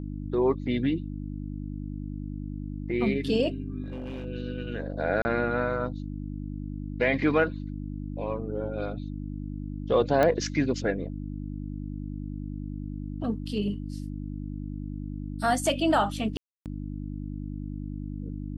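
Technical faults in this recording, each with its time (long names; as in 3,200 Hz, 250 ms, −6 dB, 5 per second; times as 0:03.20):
mains hum 50 Hz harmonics 6 −35 dBFS
0:03.84–0:04.26: clipping −31.5 dBFS
0:05.22–0:05.25: drop-out 30 ms
0:10.23: click −12 dBFS
0:16.37–0:16.66: drop-out 288 ms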